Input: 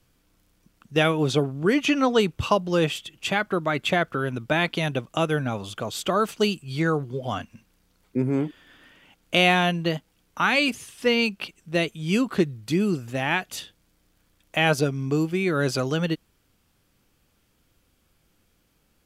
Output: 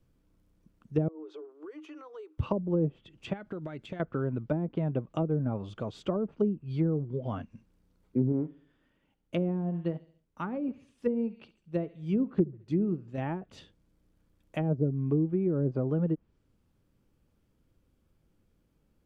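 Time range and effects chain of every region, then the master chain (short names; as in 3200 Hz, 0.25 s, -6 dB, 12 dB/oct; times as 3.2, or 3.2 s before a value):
1.08–2.38 rippled Chebyshev high-pass 300 Hz, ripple 9 dB + compressor, threshold -37 dBFS
3.33–4 bell 1100 Hz -6.5 dB 0.27 oct + compressor 12:1, threshold -29 dBFS
8.32–13.18 feedback echo 69 ms, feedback 47%, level -16.5 dB + upward expander, over -35 dBFS
whole clip: notch 730 Hz, Q 14; treble ducked by the level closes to 430 Hz, closed at -18.5 dBFS; tilt shelf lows +7.5 dB; gain -9 dB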